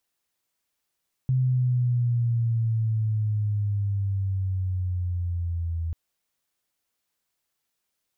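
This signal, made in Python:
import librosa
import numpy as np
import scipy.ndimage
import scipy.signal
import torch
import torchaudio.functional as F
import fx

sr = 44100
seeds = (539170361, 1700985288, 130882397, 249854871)

y = fx.riser_tone(sr, length_s=4.64, level_db=-19.0, wave='sine', hz=130.0, rise_st=-8.0, swell_db=-6.5)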